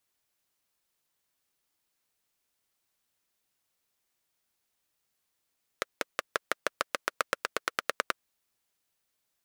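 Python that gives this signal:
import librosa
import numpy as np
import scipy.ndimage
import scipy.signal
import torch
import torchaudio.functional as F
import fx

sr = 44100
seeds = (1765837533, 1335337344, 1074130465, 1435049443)

y = fx.engine_single_rev(sr, seeds[0], length_s=2.33, rpm=600, resonances_hz=(540.0, 1300.0), end_rpm=1200)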